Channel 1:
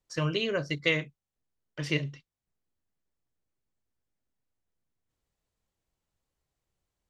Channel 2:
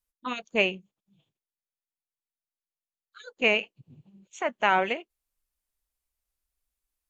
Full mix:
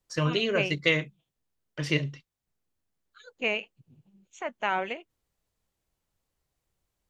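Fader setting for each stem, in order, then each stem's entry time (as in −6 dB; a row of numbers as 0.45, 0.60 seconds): +2.5, −5.5 decibels; 0.00, 0.00 seconds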